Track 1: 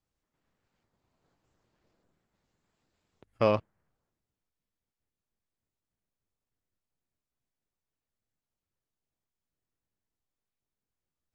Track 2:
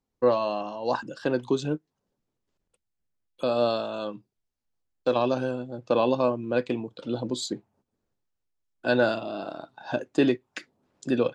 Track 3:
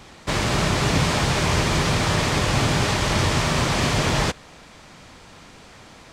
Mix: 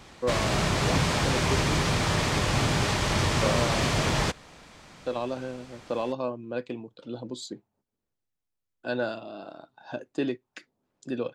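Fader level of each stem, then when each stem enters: -4.5 dB, -7.0 dB, -4.5 dB; 0.00 s, 0.00 s, 0.00 s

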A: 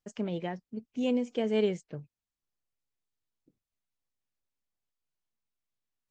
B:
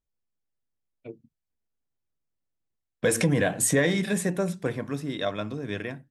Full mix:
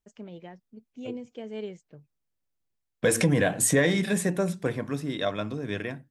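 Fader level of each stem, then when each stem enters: -9.0 dB, +0.5 dB; 0.00 s, 0.00 s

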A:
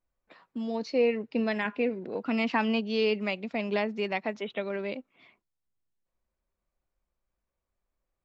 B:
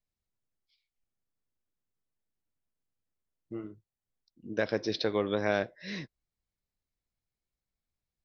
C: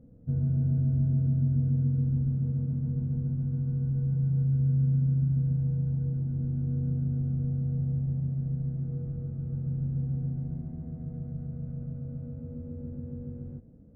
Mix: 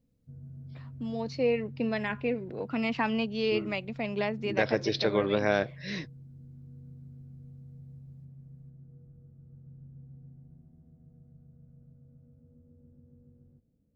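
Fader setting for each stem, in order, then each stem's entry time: -2.0 dB, +2.5 dB, -19.0 dB; 0.45 s, 0.00 s, 0.00 s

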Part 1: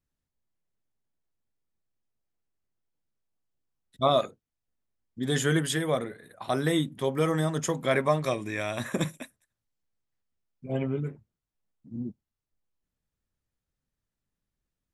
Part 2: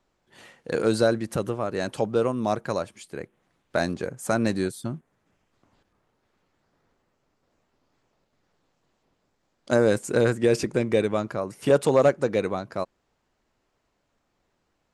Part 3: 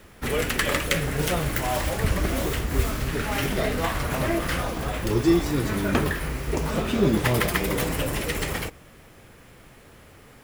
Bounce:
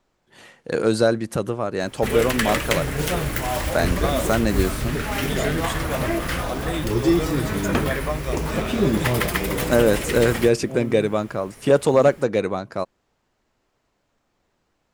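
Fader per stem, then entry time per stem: -3.0 dB, +3.0 dB, +1.0 dB; 0.00 s, 0.00 s, 1.80 s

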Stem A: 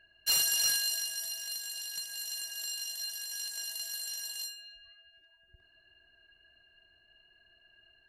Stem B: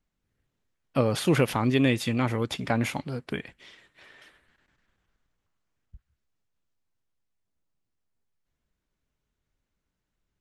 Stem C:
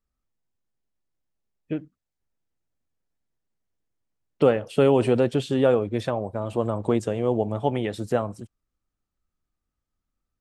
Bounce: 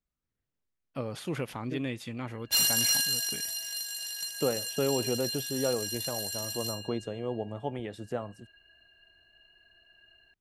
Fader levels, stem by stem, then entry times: +2.5 dB, -11.5 dB, -10.5 dB; 2.25 s, 0.00 s, 0.00 s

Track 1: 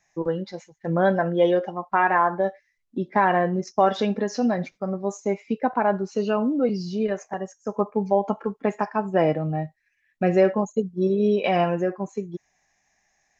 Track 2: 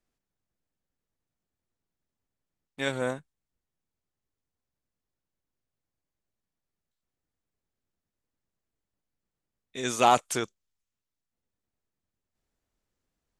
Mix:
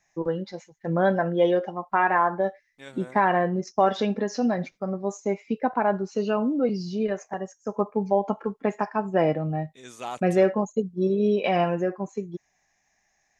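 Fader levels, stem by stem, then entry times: -1.5 dB, -14.0 dB; 0.00 s, 0.00 s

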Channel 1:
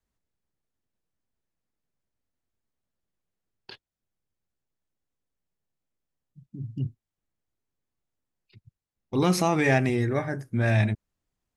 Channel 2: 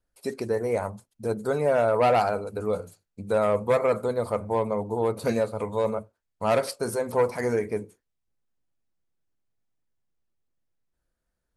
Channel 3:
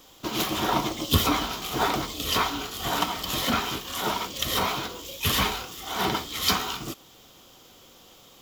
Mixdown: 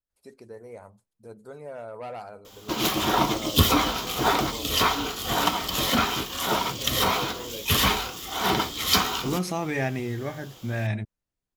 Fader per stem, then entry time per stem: -5.5 dB, -16.5 dB, +2.5 dB; 0.10 s, 0.00 s, 2.45 s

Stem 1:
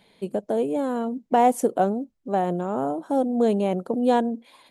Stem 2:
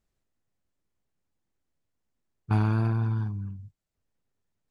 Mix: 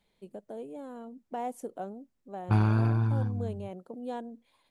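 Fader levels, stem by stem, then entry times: -17.0 dB, 0.0 dB; 0.00 s, 0.00 s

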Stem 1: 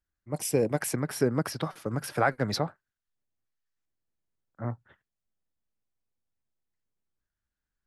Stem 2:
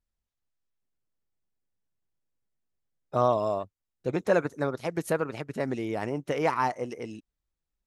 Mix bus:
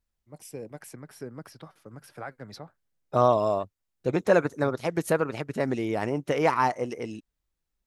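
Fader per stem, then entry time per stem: -14.0 dB, +3.0 dB; 0.00 s, 0.00 s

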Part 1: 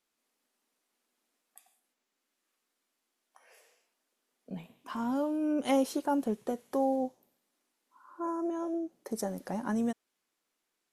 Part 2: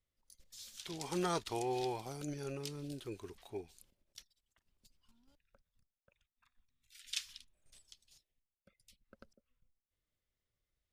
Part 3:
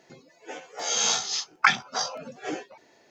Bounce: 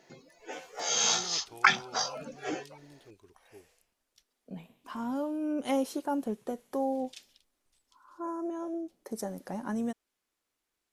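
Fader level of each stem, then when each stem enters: -2.0 dB, -10.5 dB, -2.5 dB; 0.00 s, 0.00 s, 0.00 s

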